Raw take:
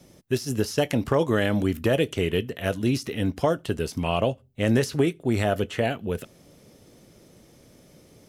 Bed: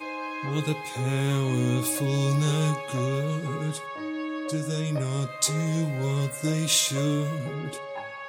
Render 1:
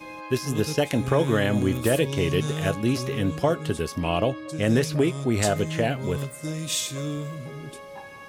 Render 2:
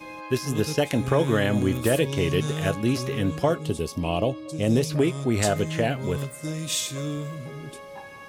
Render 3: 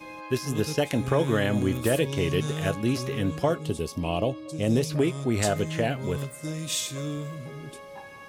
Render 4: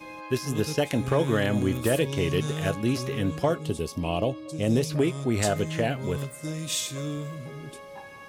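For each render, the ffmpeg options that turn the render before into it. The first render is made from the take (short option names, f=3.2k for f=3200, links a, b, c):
-filter_complex "[1:a]volume=-5dB[a];[0:a][a]amix=inputs=2:normalize=0"
-filter_complex "[0:a]asettb=1/sr,asplit=3[a][b][c];[a]atrim=end=3.584[d];[b]atrim=start=3.58:end=4.9,asetpts=PTS-STARTPTS,afade=t=in:d=0.004:c=qsin,afade=t=out:st=1.316:d=0.004:c=qsin,equalizer=f=1.6k:w=2:g=-14[e];[c]atrim=start=4.896[f];[d][e]acrossfade=d=0.004:c1=hsin:c2=qsin[g];[g][f]acrossfade=d=0.004:c1=qsin:c2=hsin"
-af "volume=-2dB"
-af "asoftclip=type=hard:threshold=-13dB"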